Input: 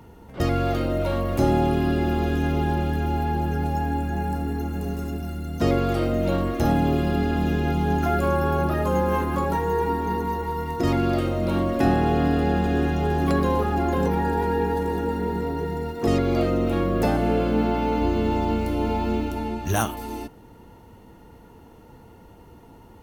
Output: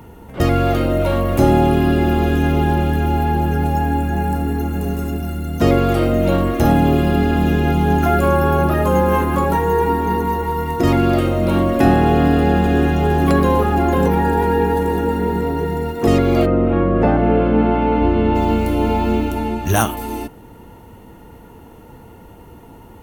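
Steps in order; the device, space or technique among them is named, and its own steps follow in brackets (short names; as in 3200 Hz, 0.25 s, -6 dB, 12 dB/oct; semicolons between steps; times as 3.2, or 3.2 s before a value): 16.45–18.34 LPF 1600 Hz -> 3000 Hz 12 dB/oct; exciter from parts (in parallel at -5 dB: HPF 2500 Hz 24 dB/oct + soft clip -34.5 dBFS, distortion -12 dB + HPF 4800 Hz 12 dB/oct); on the sum: gain +7 dB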